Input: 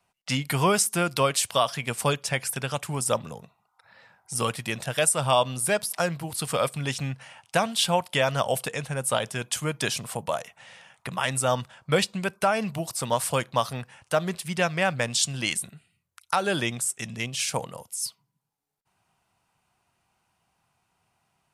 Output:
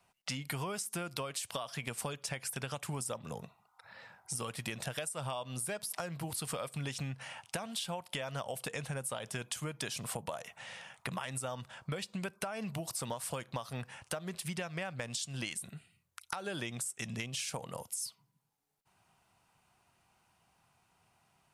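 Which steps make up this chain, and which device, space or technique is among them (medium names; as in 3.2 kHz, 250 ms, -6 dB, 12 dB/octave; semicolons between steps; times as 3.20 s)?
serial compression, peaks first (compression, threshold -30 dBFS, peak gain reduction 13 dB; compression 3:1, threshold -38 dBFS, peak gain reduction 9 dB); trim +1 dB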